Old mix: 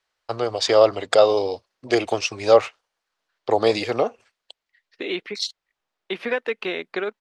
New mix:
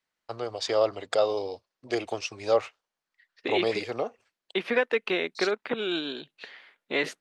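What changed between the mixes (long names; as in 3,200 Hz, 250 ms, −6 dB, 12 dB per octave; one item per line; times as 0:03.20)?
first voice −9.0 dB
second voice: entry −1.55 s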